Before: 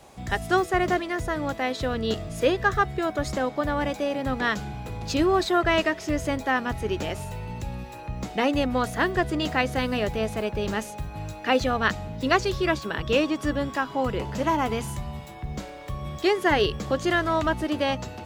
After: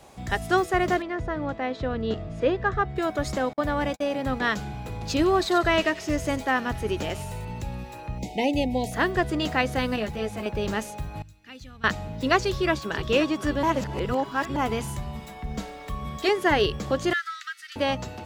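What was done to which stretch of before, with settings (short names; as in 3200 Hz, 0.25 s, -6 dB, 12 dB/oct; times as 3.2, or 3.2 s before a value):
1.02–2.96 tape spacing loss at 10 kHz 23 dB
3.53–4.47 gate -33 dBFS, range -44 dB
5.14–7.45 thin delay 94 ms, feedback 37%, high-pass 4000 Hz, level -6 dB
8.18–8.92 Chebyshev band-stop 880–2100 Hz, order 3
9.96–10.46 ensemble effect
11.22–11.84 passive tone stack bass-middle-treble 6-0-2
12.39–12.97 echo throw 0.52 s, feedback 55%, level -12.5 dB
13.63–14.56 reverse
15.15–16.29 comb 4.4 ms
17.13–17.76 rippled Chebyshev high-pass 1300 Hz, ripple 6 dB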